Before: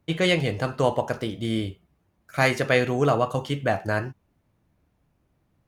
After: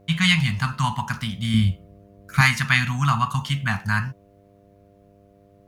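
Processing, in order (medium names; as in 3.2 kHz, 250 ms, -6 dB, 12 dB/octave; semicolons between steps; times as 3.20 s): Chebyshev band-stop 210–970 Hz, order 3; mains buzz 100 Hz, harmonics 7, -61 dBFS -1 dB/octave; 1.54–2.41 s: bass shelf 250 Hz +9.5 dB; trim +6.5 dB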